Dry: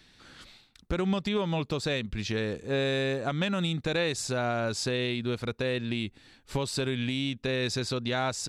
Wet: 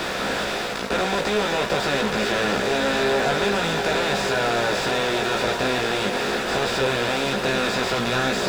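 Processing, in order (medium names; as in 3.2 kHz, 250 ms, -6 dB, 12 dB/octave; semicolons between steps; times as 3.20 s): spectral levelling over time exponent 0.2; on a send: echo with a slow build-up 99 ms, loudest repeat 8, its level -17.5 dB; on the sum: small samples zeroed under -27 dBFS; chorus voices 4, 0.42 Hz, delay 17 ms, depth 2.9 ms; overdrive pedal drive 18 dB, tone 1.9 kHz, clips at -6.5 dBFS; trim -3 dB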